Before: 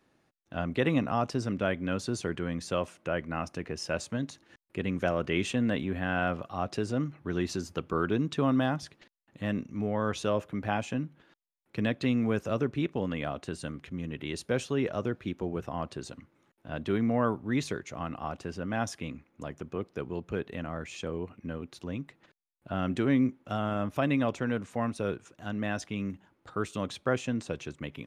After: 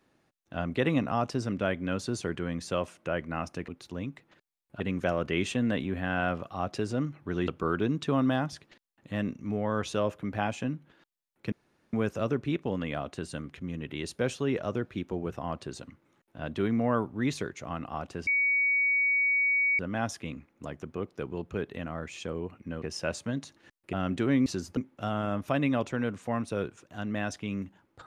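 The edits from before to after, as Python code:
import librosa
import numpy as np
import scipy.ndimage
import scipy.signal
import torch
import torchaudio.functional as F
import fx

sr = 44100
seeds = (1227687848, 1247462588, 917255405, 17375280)

y = fx.edit(x, sr, fx.swap(start_s=3.68, length_s=1.11, other_s=21.6, other_length_s=1.12),
    fx.move(start_s=7.47, length_s=0.31, to_s=23.25),
    fx.room_tone_fill(start_s=11.82, length_s=0.41),
    fx.insert_tone(at_s=18.57, length_s=1.52, hz=2250.0, db=-22.5), tone=tone)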